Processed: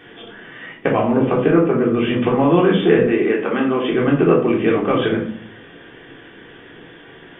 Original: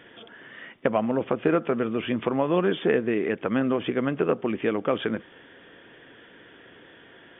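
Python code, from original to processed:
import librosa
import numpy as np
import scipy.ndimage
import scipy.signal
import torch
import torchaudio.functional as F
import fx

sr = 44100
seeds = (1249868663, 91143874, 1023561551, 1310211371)

y = fx.air_absorb(x, sr, metres=400.0, at=(1.47, 1.94))
y = fx.highpass(y, sr, hz=260.0, slope=12, at=(3.03, 3.91))
y = fx.room_shoebox(y, sr, seeds[0], volume_m3=520.0, walls='furnished', distance_m=3.6)
y = y * 10.0 ** (3.0 / 20.0)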